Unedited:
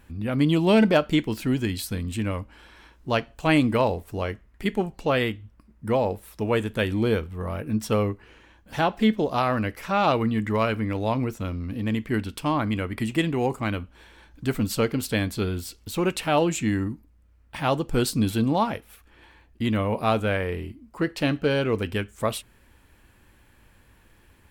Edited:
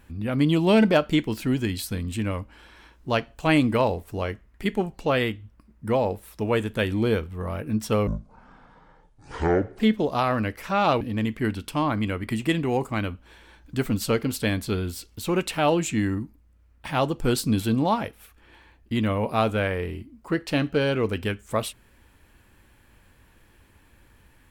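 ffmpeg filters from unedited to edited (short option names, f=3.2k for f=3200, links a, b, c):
-filter_complex "[0:a]asplit=4[a][b][c][d];[a]atrim=end=8.074[e];[b]atrim=start=8.07:end=8.98,asetpts=PTS-STARTPTS,asetrate=23373,aresample=44100[f];[c]atrim=start=8.976:end=10.202[g];[d]atrim=start=11.698[h];[e][f]acrossfade=d=0.004:c1=hsin:c2=hsin[i];[i][g]acrossfade=d=0.004:c1=hsin:c2=hsin[j];[j][h]acrossfade=d=0.004:c1=hsin:c2=hsin"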